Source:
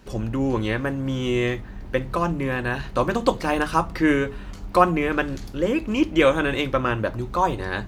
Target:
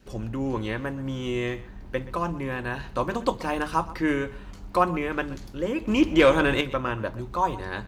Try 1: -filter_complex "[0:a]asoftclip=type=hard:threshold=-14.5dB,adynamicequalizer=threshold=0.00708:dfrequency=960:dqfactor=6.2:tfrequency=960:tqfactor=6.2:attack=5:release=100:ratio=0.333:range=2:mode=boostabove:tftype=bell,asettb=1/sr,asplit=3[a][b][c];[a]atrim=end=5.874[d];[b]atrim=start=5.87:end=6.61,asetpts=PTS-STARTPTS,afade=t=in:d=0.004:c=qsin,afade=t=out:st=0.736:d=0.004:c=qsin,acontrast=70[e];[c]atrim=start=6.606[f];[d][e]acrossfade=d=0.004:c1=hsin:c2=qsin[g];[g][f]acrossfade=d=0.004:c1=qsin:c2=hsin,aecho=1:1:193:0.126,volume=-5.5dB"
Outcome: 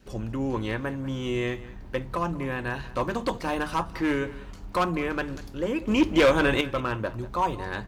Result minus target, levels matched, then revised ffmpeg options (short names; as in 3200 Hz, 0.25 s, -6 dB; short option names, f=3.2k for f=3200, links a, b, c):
hard clip: distortion +32 dB; echo 67 ms late
-filter_complex "[0:a]asoftclip=type=hard:threshold=-4dB,adynamicequalizer=threshold=0.00708:dfrequency=960:dqfactor=6.2:tfrequency=960:tqfactor=6.2:attack=5:release=100:ratio=0.333:range=2:mode=boostabove:tftype=bell,asettb=1/sr,asplit=3[a][b][c];[a]atrim=end=5.874[d];[b]atrim=start=5.87:end=6.61,asetpts=PTS-STARTPTS,afade=t=in:d=0.004:c=qsin,afade=t=out:st=0.736:d=0.004:c=qsin,acontrast=70[e];[c]atrim=start=6.606[f];[d][e]acrossfade=d=0.004:c1=hsin:c2=qsin[g];[g][f]acrossfade=d=0.004:c1=qsin:c2=hsin,aecho=1:1:126:0.126,volume=-5.5dB"